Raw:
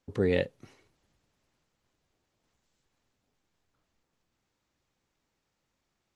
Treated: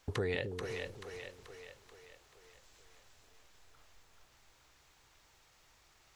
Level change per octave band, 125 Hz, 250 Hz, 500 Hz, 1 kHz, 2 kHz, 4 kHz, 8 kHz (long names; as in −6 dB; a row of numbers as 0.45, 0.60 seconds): −4.5 dB, −10.5 dB, −7.0 dB, +1.0 dB, −1.5 dB, 0.0 dB, can't be measured